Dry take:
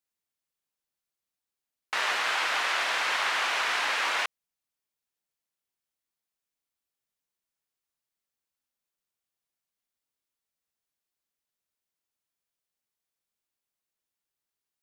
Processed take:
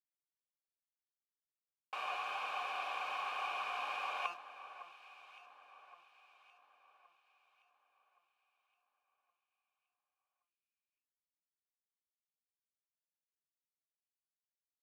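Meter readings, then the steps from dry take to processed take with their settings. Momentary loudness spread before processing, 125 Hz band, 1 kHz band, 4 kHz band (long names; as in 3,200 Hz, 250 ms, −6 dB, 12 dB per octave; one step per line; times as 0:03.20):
4 LU, can't be measured, −8.5 dB, −17.0 dB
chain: hum removal 173 Hz, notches 16
reversed playback
downward compressor 5 to 1, threshold −45 dBFS, peak gain reduction 18 dB
reversed playback
bit reduction 8 bits
formant filter a
notch comb filter 670 Hz
delay that swaps between a low-pass and a high-pass 560 ms, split 1,900 Hz, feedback 63%, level −12 dB
level +18 dB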